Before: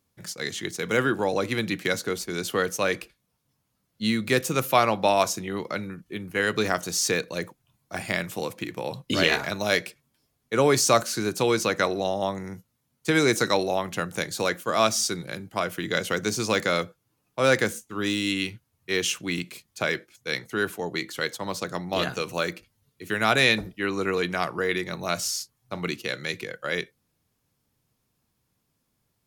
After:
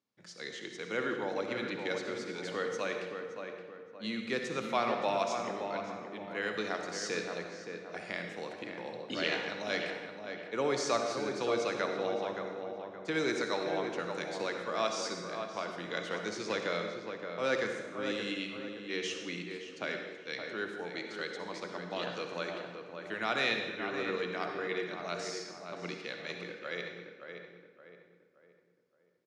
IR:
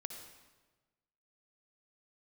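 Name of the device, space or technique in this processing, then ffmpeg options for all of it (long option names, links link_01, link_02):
supermarket ceiling speaker: -filter_complex "[0:a]highpass=210,lowpass=6800,lowpass=6800[link_01];[1:a]atrim=start_sample=2205[link_02];[link_01][link_02]afir=irnorm=-1:irlink=0,asplit=2[link_03][link_04];[link_04]adelay=571,lowpass=frequency=1900:poles=1,volume=-6dB,asplit=2[link_05][link_06];[link_06]adelay=571,lowpass=frequency=1900:poles=1,volume=0.41,asplit=2[link_07][link_08];[link_08]adelay=571,lowpass=frequency=1900:poles=1,volume=0.41,asplit=2[link_09][link_10];[link_10]adelay=571,lowpass=frequency=1900:poles=1,volume=0.41,asplit=2[link_11][link_12];[link_12]adelay=571,lowpass=frequency=1900:poles=1,volume=0.41[link_13];[link_03][link_05][link_07][link_09][link_11][link_13]amix=inputs=6:normalize=0,volume=-7.5dB"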